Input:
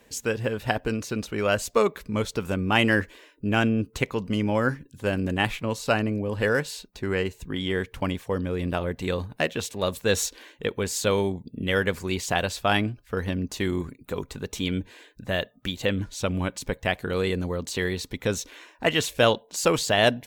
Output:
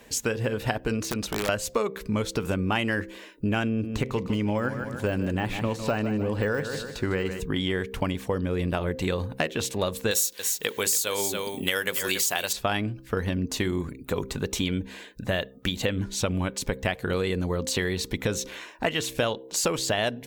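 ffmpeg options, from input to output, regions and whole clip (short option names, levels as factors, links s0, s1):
-filter_complex "[0:a]asettb=1/sr,asplit=3[s0][s1][s2];[s0]atrim=end=1.024[s3];[s1]atrim=start=1.02:end=1.49,asetpts=PTS-STARTPTS,afade=t=in:d=0.004:c=qsin,afade=t=out:st=0.466:d=0.004:c=qsin,acompressor=threshold=0.0316:ratio=6:attack=3.2:release=140:knee=1:detection=peak,aeval=exprs='(mod(20*val(0)+1,2)-1)/20':c=same[s4];[s2]atrim=start=1.486[s5];[s3][s4]acrossfade=d=0.004:c1=hsin:c2=qsin[s6];[s6][s5]acrossfade=d=0.004:c1=qsin:c2=hsin,asettb=1/sr,asplit=3[s7][s8][s9];[s7]atrim=end=3.684[s10];[s8]atrim=start=3.68:end=7.4,asetpts=PTS-STARTPTS,afade=t=in:d=0.004:c=qsin,afade=t=out:st=3.716:d=0.004:c=qsin,deesser=0.95,equalizer=f=14000:w=1.2:g=-3,aecho=1:1:153|306|459|612:0.266|0.104|0.0405|0.0158,atrim=end_sample=164052[s11];[s9]atrim=start=7.396[s12];[s10][s11]acrossfade=d=0.004:c1=hsin:c2=qsin[s13];[s13][s12]acrossfade=d=0.004:c1=qsin:c2=hsin,asettb=1/sr,asplit=3[s14][s15][s16];[s14]atrim=end=10.114[s17];[s15]atrim=start=10.11:end=12.53,asetpts=PTS-STARTPTS,afade=t=in:d=0.004:c=qsin,afade=t=out:st=2.416:d=0.004:c=qsin,aemphasis=mode=production:type=riaa,aecho=1:1:281:0.282,atrim=end_sample=106722[s18];[s16]atrim=start=12.526[s19];[s17][s18]acrossfade=d=0.004:c1=hsin:c2=qsin[s20];[s20][s19]acrossfade=d=0.004:c1=qsin:c2=hsin,bandreject=f=65.39:t=h:w=4,bandreject=f=130.78:t=h:w=4,bandreject=f=196.17:t=h:w=4,bandreject=f=261.56:t=h:w=4,bandreject=f=326.95:t=h:w=4,bandreject=f=392.34:t=h:w=4,bandreject=f=457.73:t=h:w=4,bandreject=f=523.12:t=h:w=4,acompressor=threshold=0.0355:ratio=6,volume=2"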